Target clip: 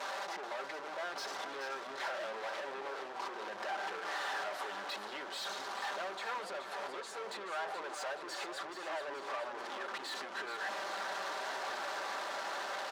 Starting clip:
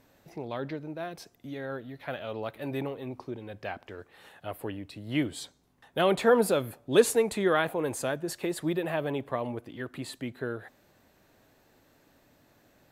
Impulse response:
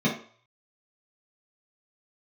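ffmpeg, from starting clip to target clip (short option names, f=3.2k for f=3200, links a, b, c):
-filter_complex "[0:a]aeval=exprs='val(0)+0.5*0.0211*sgn(val(0))':c=same,lowpass=4.6k,equalizer=f=2.4k:w=1.5:g=-14,aecho=1:1:5.1:0.62,acompressor=threshold=-36dB:ratio=6,asplit=2[a][b];[b]highpass=f=720:p=1,volume=24dB,asoftclip=type=tanh:threshold=-27.5dB[c];[a][c]amix=inputs=2:normalize=0,lowpass=f=1.5k:p=1,volume=-6dB,highpass=970,asplit=7[d][e][f][g][h][i][j];[e]adelay=428,afreqshift=-31,volume=-9dB[k];[f]adelay=856,afreqshift=-62,volume=-14.2dB[l];[g]adelay=1284,afreqshift=-93,volume=-19.4dB[m];[h]adelay=1712,afreqshift=-124,volume=-24.6dB[n];[i]adelay=2140,afreqshift=-155,volume=-29.8dB[o];[j]adelay=2568,afreqshift=-186,volume=-35dB[p];[d][k][l][m][n][o][p]amix=inputs=7:normalize=0,asplit=2[q][r];[1:a]atrim=start_sample=2205[s];[r][s]afir=irnorm=-1:irlink=0,volume=-30dB[t];[q][t]amix=inputs=2:normalize=0,volume=2dB"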